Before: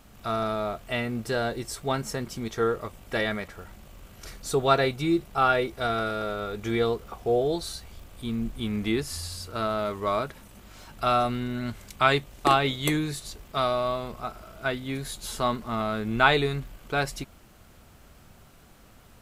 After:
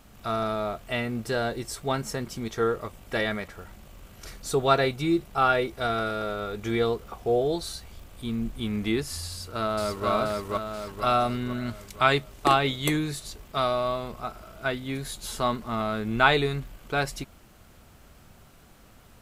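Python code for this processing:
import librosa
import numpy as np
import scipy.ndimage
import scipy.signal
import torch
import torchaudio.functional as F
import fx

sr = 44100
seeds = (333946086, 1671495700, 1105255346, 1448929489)

y = fx.echo_throw(x, sr, start_s=9.29, length_s=0.8, ms=480, feedback_pct=50, wet_db=-1.0)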